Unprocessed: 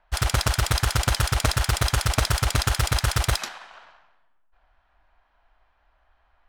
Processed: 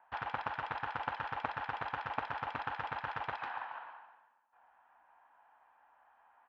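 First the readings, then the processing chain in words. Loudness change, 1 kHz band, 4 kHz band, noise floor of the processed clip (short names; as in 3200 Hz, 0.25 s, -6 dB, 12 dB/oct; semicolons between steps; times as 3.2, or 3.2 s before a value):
-16.0 dB, -6.5 dB, -24.5 dB, -69 dBFS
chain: compressor 6:1, threshold -29 dBFS, peak gain reduction 12.5 dB; speaker cabinet 370–2200 Hz, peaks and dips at 380 Hz -10 dB, 610 Hz -8 dB, 870 Hz +7 dB, 1300 Hz -4 dB, 2100 Hz -7 dB; on a send: feedback echo 0.143 s, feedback 41%, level -14 dB; on the sum: gain +2.5 dB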